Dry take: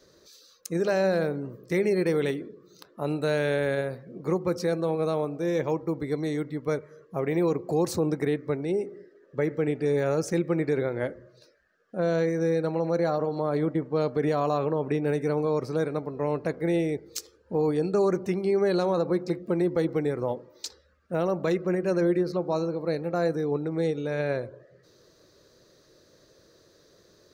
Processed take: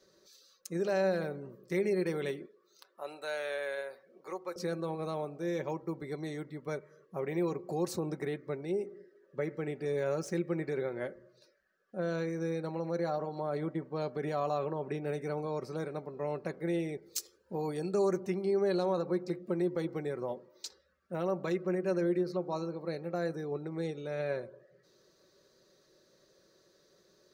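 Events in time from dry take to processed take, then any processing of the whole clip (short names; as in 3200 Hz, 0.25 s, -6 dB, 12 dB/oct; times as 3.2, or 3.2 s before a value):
2.46–4.56 HPF 620 Hz
8.14–10.99 median filter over 3 samples
17.02–18.2 high shelf 5600 Hz +9.5 dB
whole clip: low shelf 120 Hz -7.5 dB; comb 5.3 ms, depth 42%; gain -7.5 dB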